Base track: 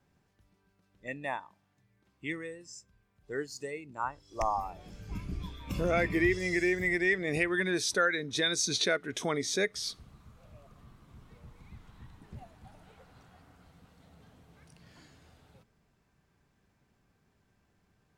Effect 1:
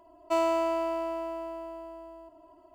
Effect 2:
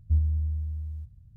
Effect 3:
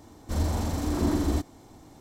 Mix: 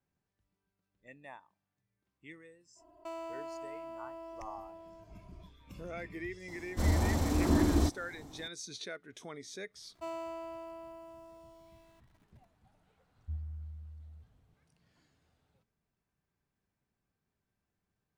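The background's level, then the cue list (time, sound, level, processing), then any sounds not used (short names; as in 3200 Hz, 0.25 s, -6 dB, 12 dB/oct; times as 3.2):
base track -14.5 dB
2.75 add 1 -6 dB, fades 0.05 s + compressor 2.5:1, threshold -37 dBFS
6.48 add 3 -1.5 dB
9.71 add 1 -14.5 dB + sample gate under -49 dBFS
13.18 add 2 -16 dB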